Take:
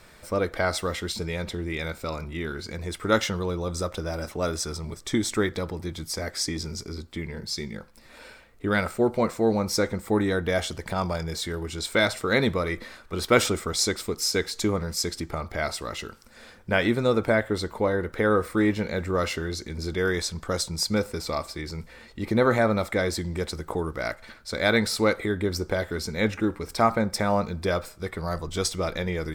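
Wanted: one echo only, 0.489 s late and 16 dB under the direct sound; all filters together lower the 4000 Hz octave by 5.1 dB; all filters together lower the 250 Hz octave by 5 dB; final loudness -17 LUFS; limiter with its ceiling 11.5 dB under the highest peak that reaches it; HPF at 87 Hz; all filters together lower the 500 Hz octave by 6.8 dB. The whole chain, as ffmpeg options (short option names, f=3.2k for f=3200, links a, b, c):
-af "highpass=87,equalizer=f=250:t=o:g=-4.5,equalizer=f=500:t=o:g=-7,equalizer=f=4k:t=o:g=-6.5,alimiter=limit=-19.5dB:level=0:latency=1,aecho=1:1:489:0.158,volume=15.5dB"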